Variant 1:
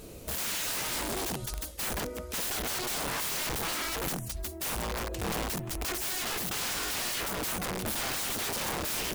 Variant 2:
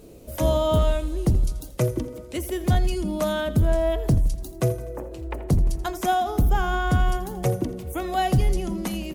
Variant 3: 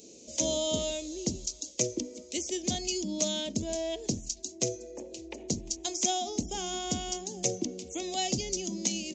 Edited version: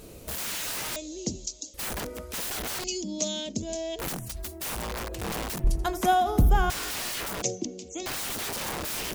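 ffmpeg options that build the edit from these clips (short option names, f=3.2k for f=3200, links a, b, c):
-filter_complex "[2:a]asplit=3[a][b][c];[0:a]asplit=5[d][e][f][g][h];[d]atrim=end=0.962[i];[a]atrim=start=0.958:end=1.742[j];[e]atrim=start=1.738:end=2.842[k];[b]atrim=start=2.838:end=3.992[l];[f]atrim=start=3.988:end=5.642[m];[1:a]atrim=start=5.638:end=6.702[n];[g]atrim=start=6.698:end=7.422[o];[c]atrim=start=7.418:end=8.062[p];[h]atrim=start=8.058[q];[i][j]acrossfade=d=0.004:c1=hsin:c2=hsin[r];[r][k]acrossfade=d=0.004:c1=hsin:c2=hsin[s];[s][l]acrossfade=d=0.004:c1=hsin:c2=hsin[t];[t][m]acrossfade=d=0.004:c1=hsin:c2=hsin[u];[u][n]acrossfade=d=0.004:c1=hsin:c2=hsin[v];[v][o]acrossfade=d=0.004:c1=hsin:c2=hsin[w];[w][p]acrossfade=d=0.004:c1=hsin:c2=hsin[x];[x][q]acrossfade=d=0.004:c1=hsin:c2=hsin"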